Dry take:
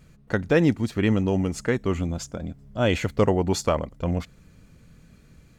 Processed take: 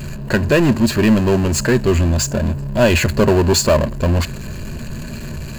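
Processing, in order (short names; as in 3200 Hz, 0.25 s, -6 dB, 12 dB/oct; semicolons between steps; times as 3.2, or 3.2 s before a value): power-law curve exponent 0.5; ripple EQ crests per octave 1.4, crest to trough 9 dB; gain +1.5 dB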